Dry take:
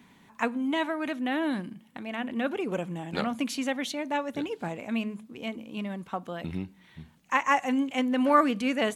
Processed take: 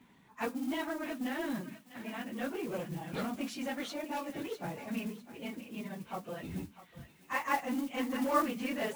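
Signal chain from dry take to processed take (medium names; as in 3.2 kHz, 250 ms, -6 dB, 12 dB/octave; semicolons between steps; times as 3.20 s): phase randomisation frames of 50 ms; treble shelf 4.3 kHz -6 dB; modulation noise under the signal 19 dB; in parallel at -10 dB: wavefolder -29 dBFS; on the sum: thinning echo 650 ms, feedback 32%, high-pass 1.2 kHz, level -10.5 dB; trim -8 dB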